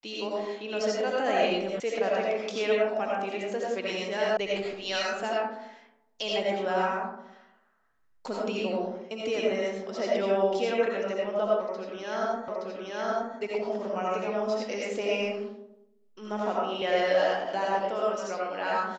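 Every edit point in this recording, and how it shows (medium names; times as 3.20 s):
1.80 s: sound stops dead
4.37 s: sound stops dead
12.48 s: repeat of the last 0.87 s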